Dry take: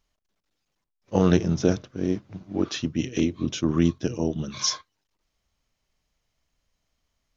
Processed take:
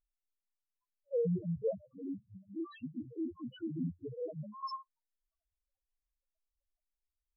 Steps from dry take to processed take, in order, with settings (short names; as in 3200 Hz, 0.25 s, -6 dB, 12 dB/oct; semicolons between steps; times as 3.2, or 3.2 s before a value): band shelf 840 Hz +11.5 dB; loudest bins only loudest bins 1; gain -6 dB